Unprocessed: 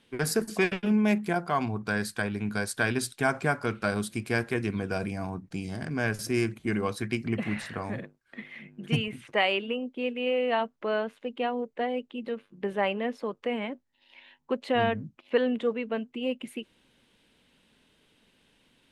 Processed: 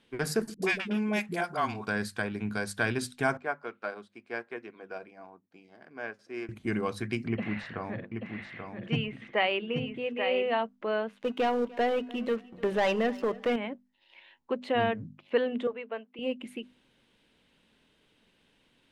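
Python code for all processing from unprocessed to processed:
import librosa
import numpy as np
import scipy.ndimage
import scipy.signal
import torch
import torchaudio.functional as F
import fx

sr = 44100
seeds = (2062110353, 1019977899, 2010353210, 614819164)

y = fx.chain(x, sr, fx.tilt_eq(slope=2.0),
    fx.dispersion(late='highs', ms=81.0, hz=380.0), at=(0.54, 1.87))
y = fx.chain(y, sr, fx.highpass(hz=430.0, slope=12),
    fx.spacing_loss(db_at_10k=21),
    fx.upward_expand(threshold_db=-54.0, expansion=1.5), at=(3.37, 6.49))
y = fx.chain(y, sr, fx.lowpass(hz=4200.0, slope=12),
    fx.echo_single(ms=834, db=-6.0), at=(7.28, 10.47))
y = fx.chain(y, sr, fx.leveller(passes=3),
    fx.comb_fb(f0_hz=88.0, decay_s=0.69, harmonics='odd', damping=0.0, mix_pct=40),
    fx.echo_feedback(ms=298, feedback_pct=25, wet_db=-21.5), at=(11.22, 13.56))
y = fx.chain(y, sr, fx.highpass(hz=490.0, slope=12),
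    fx.air_absorb(metres=190.0), at=(15.67, 16.19))
y = fx.high_shelf(y, sr, hz=7800.0, db=-8.0)
y = fx.hum_notches(y, sr, base_hz=50, count=5)
y = F.gain(torch.from_numpy(y), -1.5).numpy()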